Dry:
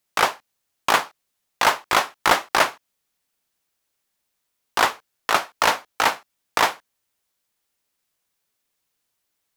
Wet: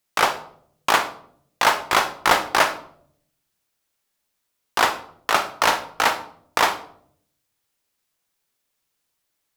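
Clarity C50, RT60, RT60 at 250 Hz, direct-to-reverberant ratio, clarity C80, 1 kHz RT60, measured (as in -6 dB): 12.0 dB, 0.65 s, 0.90 s, 8.5 dB, 16.0 dB, 0.55 s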